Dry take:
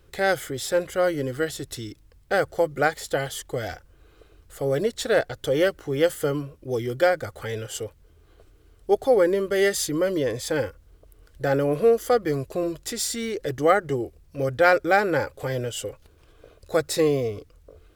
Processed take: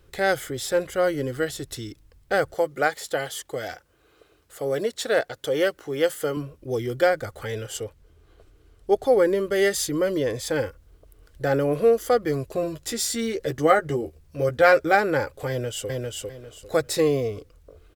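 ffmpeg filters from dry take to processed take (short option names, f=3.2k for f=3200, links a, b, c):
-filter_complex "[0:a]asettb=1/sr,asplit=3[a][b][c];[a]atrim=end=2.544[d];[b]atrim=start=2.54:end=6.37,asetpts=PTS-STARTPTS,afade=t=in:d=0.004:c=qsin,afade=t=out:st=3.826:d=0.004:c=qsin,highpass=f=290:p=1[e];[c]atrim=start=6.366[f];[d][e]acrossfade=d=0.004:c1=hsin:c2=qsin[g];[g][f]acrossfade=d=0.004:c1=qsin:c2=hsin,asettb=1/sr,asplit=3[h][i][j];[h]atrim=end=7.774[k];[i]atrim=start=7.77:end=9.07,asetpts=PTS-STARTPTS,afade=t=in:d=0.004:c=qsin,afade=t=out:st=1.296:d=0.004:c=qsin,highshelf=f=11k:g=-5.5[l];[j]atrim=start=9.066[m];[k][l]acrossfade=d=0.004:c1=hsin:c2=qsin[n];[n][m]acrossfade=d=0.004:c1=qsin:c2=hsin,asettb=1/sr,asplit=3[o][p][q];[o]atrim=end=12.544[r];[p]atrim=start=12.54:end=14.95,asetpts=PTS-STARTPTS,afade=t=in:d=0.004:c=qsin,afade=t=out:st=2.406:d=0.004:c=qsin,asplit=2[s][t];[t]adelay=13,volume=-6dB[u];[s][u]amix=inputs=2:normalize=0,atrim=end_sample=106281[v];[q]atrim=start=14.946[w];[r][v]acrossfade=d=0.004:c1=hsin:c2=qsin[x];[x][w]acrossfade=d=0.004:c1=qsin:c2=hsin,asplit=2[y][z];[z]afade=t=in:st=15.49:d=0.01,afade=t=out:st=15.89:d=0.01,aecho=0:1:400|800|1200|1600:0.794328|0.198582|0.0496455|0.0124114[aa];[y][aa]amix=inputs=2:normalize=0"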